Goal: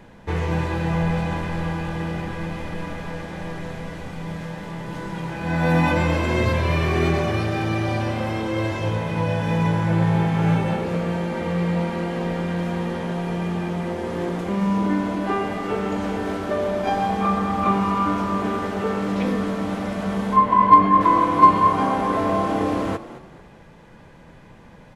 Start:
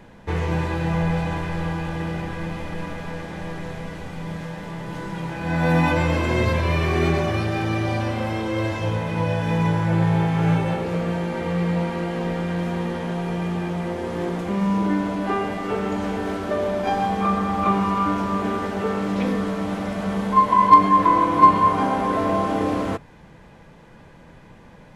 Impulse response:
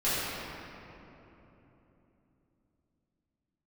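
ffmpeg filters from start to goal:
-filter_complex "[0:a]asettb=1/sr,asplit=3[link_01][link_02][link_03];[link_01]atrim=end=20.364[link_04];[link_02]atrim=start=20.36:end=21.01,asetpts=PTS-STARTPTS,afade=type=in:duration=0.004:curve=qsin,afade=type=out:start_time=0.646:duration=0.004:curve=qsin,bass=frequency=250:gain=2,treble=frequency=4000:gain=-13[link_05];[link_03]atrim=start=21.006[link_06];[link_04][link_05]acrossfade=duration=0.004:curve1=hsin:curve2=qsin[link_07];[link_07][link_06]acrossfade=duration=0.004:curve1=qsin:curve2=hsin,asplit=4[link_08][link_09][link_10][link_11];[link_09]adelay=220,afreqshift=40,volume=-15dB[link_12];[link_10]adelay=440,afreqshift=80,volume=-24.4dB[link_13];[link_11]adelay=660,afreqshift=120,volume=-33.7dB[link_14];[link_08][link_12][link_13][link_14]amix=inputs=4:normalize=0"

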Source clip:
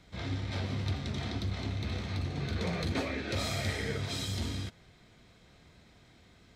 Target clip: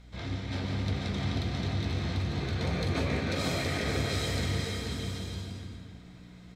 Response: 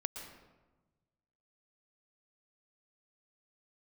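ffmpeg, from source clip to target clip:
-filter_complex "[0:a]aeval=exprs='val(0)+0.00282*(sin(2*PI*60*n/s)+sin(2*PI*2*60*n/s)/2+sin(2*PI*3*60*n/s)/3+sin(2*PI*4*60*n/s)/4+sin(2*PI*5*60*n/s)/5)':channel_layout=same,aecho=1:1:490|784|960.4|1066|1130:0.631|0.398|0.251|0.158|0.1[link_01];[1:a]atrim=start_sample=2205,asetrate=36162,aresample=44100[link_02];[link_01][link_02]afir=irnorm=-1:irlink=0"

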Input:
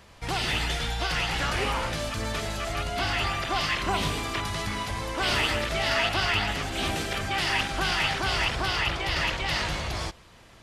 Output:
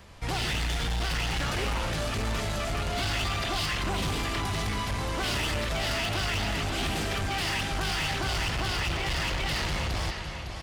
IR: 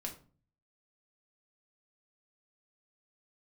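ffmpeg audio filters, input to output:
-filter_complex "[0:a]lowshelf=frequency=210:gain=5,aecho=1:1:556|1112|1668|2224:0.316|0.13|0.0532|0.0218,acrossover=split=460|3000[link_01][link_02][link_03];[link_02]acompressor=threshold=-28dB:ratio=6[link_04];[link_01][link_04][link_03]amix=inputs=3:normalize=0,asettb=1/sr,asplit=3[link_05][link_06][link_07];[link_05]atrim=end=2.924[link_08];[link_06]atrim=start=2.92:end=3.66,asetpts=PTS-STARTPTS,afade=type=in:duration=0.004:curve=qsin,afade=type=out:start_time=0.736:duration=0.004:curve=qsin,equalizer=frequency=3900:width=1.5:gain=4.5[link_09];[link_07]atrim=start=3.656[link_10];[link_08][link_09]acrossfade=duration=0.004:curve1=hsin:curve2=qsin[link_11];[link_11][link_10]acrossfade=duration=0.004:curve1=qsin:curve2=hsin,asoftclip=type=hard:threshold=-26dB"

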